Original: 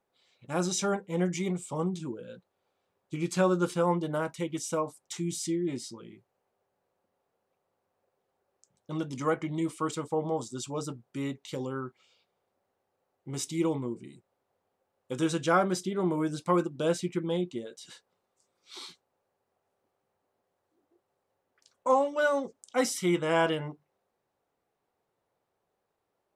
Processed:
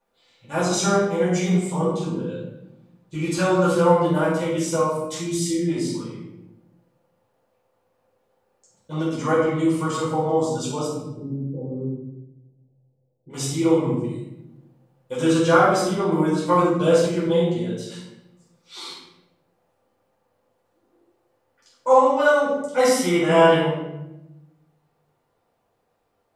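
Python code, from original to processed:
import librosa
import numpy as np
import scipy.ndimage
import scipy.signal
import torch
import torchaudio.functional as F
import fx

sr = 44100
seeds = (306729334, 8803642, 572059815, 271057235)

y = fx.gaussian_blur(x, sr, sigma=17.0, at=(10.86, 13.29), fade=0.02)
y = fx.dynamic_eq(y, sr, hz=240.0, q=2.0, threshold_db=-44.0, ratio=4.0, max_db=-3)
y = fx.room_shoebox(y, sr, seeds[0], volume_m3=330.0, walls='mixed', distance_m=4.9)
y = y * 10.0 ** (-3.0 / 20.0)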